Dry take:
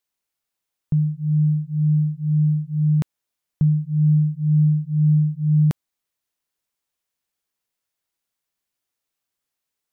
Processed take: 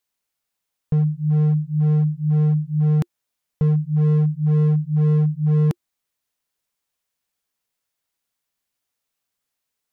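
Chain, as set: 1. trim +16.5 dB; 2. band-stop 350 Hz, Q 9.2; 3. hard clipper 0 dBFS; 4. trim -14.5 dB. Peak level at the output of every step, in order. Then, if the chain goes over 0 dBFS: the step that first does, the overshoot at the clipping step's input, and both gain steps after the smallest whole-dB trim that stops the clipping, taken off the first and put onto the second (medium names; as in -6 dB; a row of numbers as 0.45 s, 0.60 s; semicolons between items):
+5.0 dBFS, +5.0 dBFS, 0.0 dBFS, -14.5 dBFS; step 1, 5.0 dB; step 1 +11.5 dB, step 4 -9.5 dB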